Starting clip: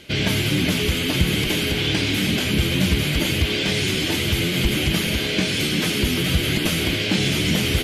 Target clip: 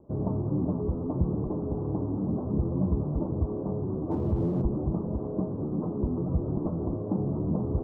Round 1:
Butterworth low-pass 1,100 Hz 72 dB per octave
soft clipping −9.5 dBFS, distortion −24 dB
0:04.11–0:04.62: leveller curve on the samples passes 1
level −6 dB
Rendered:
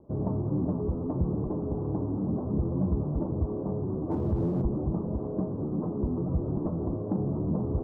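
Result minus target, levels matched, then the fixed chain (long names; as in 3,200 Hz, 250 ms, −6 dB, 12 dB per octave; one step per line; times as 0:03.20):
soft clipping: distortion +17 dB
Butterworth low-pass 1,100 Hz 72 dB per octave
soft clipping 0 dBFS, distortion −40 dB
0:04.11–0:04.62: leveller curve on the samples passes 1
level −6 dB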